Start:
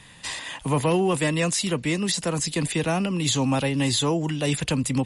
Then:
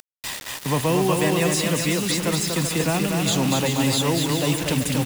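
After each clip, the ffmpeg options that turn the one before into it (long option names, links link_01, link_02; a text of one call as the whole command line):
ffmpeg -i in.wav -af "acompressor=mode=upward:threshold=-37dB:ratio=2.5,aecho=1:1:240|384|470.4|522.2|553.3:0.631|0.398|0.251|0.158|0.1,acrusher=bits=4:mix=0:aa=0.000001" out.wav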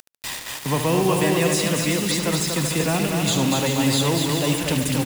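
ffmpeg -i in.wav -af "aecho=1:1:73|146|219|292|365:0.355|0.156|0.0687|0.0302|0.0133" out.wav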